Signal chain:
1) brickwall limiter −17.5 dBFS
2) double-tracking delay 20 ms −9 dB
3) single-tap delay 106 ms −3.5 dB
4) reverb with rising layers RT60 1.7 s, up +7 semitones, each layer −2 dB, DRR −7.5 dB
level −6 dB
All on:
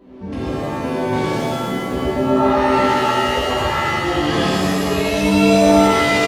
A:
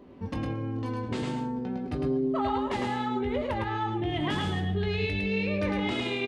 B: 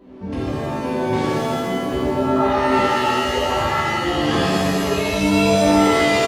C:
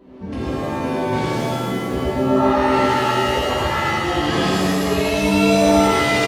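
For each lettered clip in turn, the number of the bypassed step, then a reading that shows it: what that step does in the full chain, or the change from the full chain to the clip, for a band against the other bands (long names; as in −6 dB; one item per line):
4, 125 Hz band +6.0 dB
3, change in momentary loudness spread −1 LU
2, change in momentary loudness spread −2 LU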